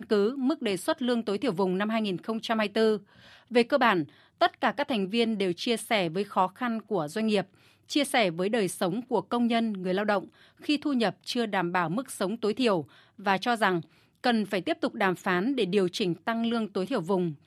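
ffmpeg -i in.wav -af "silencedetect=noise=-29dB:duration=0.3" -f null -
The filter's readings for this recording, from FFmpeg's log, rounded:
silence_start: 2.97
silence_end: 3.54 | silence_duration: 0.57
silence_start: 4.03
silence_end: 4.41 | silence_duration: 0.39
silence_start: 7.41
silence_end: 7.92 | silence_duration: 0.50
silence_start: 10.19
silence_end: 10.69 | silence_duration: 0.50
silence_start: 12.81
silence_end: 13.26 | silence_duration: 0.45
silence_start: 13.79
silence_end: 14.24 | silence_duration: 0.45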